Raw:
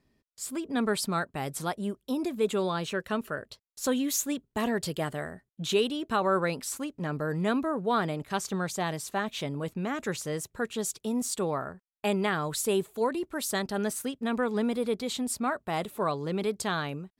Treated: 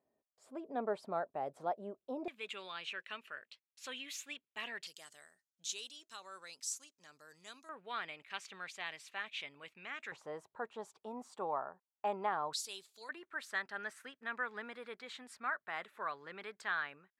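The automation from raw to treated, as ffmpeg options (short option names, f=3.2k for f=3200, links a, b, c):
-af "asetnsamples=n=441:p=0,asendcmd='2.28 bandpass f 2500;4.87 bandpass f 6200;7.69 bandpass f 2400;10.12 bandpass f 870;12.53 bandpass f 4700;13.09 bandpass f 1700',bandpass=f=650:t=q:w=2.7:csg=0"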